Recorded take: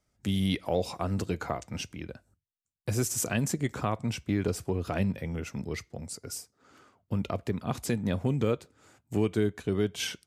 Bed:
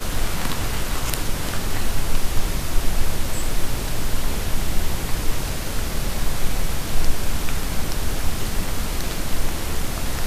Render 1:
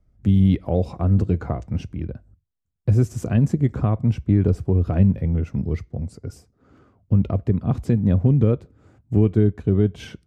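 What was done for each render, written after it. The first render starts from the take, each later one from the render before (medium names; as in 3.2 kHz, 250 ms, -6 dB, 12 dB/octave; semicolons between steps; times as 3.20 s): tilt EQ -4.5 dB/octave; band-stop 890 Hz, Q 18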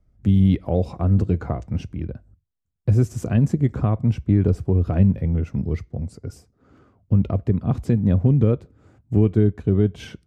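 no audible change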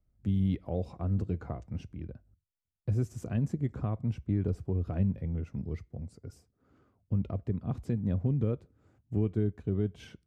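trim -12 dB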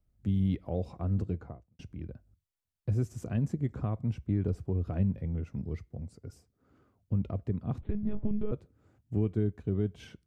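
1.21–1.79 s: studio fade out; 7.81–8.52 s: monotone LPC vocoder at 8 kHz 210 Hz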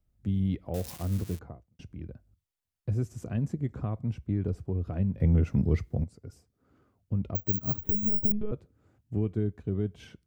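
0.74–1.39 s: zero-crossing glitches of -29 dBFS; 5.20–6.04 s: gain +11 dB; 7.35–8.32 s: careless resampling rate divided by 2×, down filtered, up zero stuff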